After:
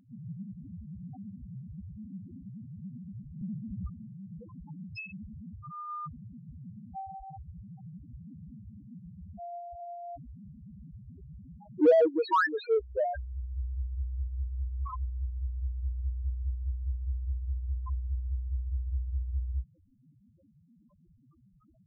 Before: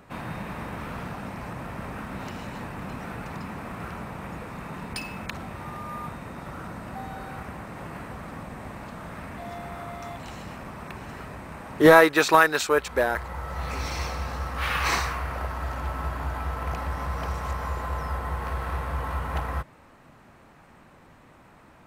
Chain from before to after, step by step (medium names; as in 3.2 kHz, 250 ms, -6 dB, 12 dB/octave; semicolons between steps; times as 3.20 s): loudest bins only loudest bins 1; 3.41–3.90 s: tilt EQ -2.5 dB/octave; in parallel at -4.5 dB: saturation -29 dBFS, distortion -7 dB